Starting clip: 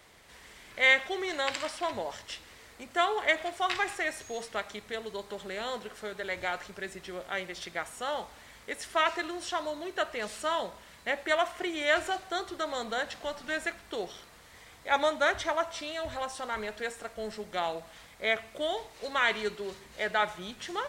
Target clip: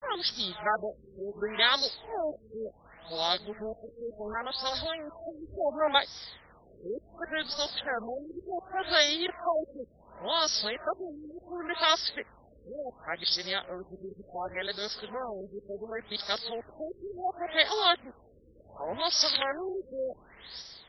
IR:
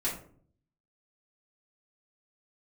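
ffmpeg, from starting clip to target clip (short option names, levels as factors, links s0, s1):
-af "areverse,aexciter=amount=14.9:drive=5.7:freq=4000,afftfilt=real='re*lt(b*sr/1024,530*pow(5900/530,0.5+0.5*sin(2*PI*0.69*pts/sr)))':imag='im*lt(b*sr/1024,530*pow(5900/530,0.5+0.5*sin(2*PI*0.69*pts/sr)))':win_size=1024:overlap=0.75"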